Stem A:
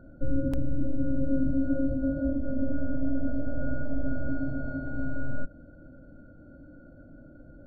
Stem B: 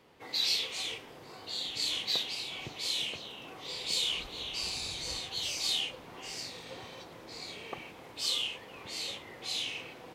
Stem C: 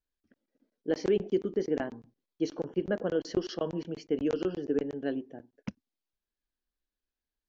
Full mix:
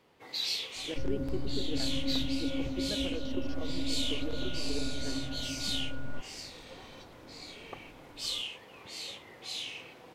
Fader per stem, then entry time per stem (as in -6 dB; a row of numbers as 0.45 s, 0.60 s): -7.0 dB, -3.5 dB, -10.5 dB; 0.75 s, 0.00 s, 0.00 s